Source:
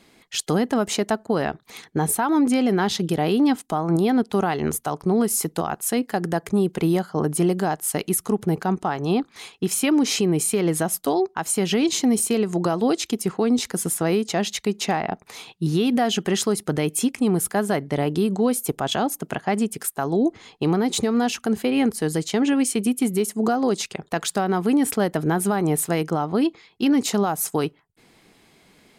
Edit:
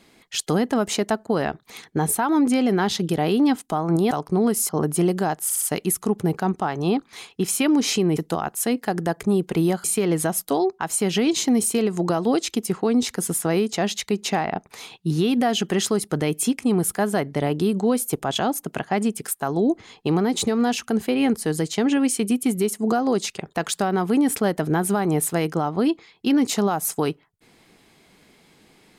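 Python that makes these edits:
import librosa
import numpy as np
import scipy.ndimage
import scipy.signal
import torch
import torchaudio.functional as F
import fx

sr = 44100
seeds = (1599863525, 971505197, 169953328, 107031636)

y = fx.edit(x, sr, fx.cut(start_s=4.11, length_s=0.74),
    fx.move(start_s=5.43, length_s=1.67, to_s=10.4),
    fx.stutter(start_s=7.85, slice_s=0.06, count=4), tone=tone)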